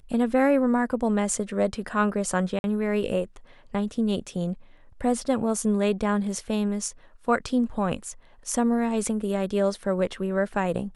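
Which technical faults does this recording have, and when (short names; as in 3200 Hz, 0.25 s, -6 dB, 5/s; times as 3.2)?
2.59–2.64 gap 51 ms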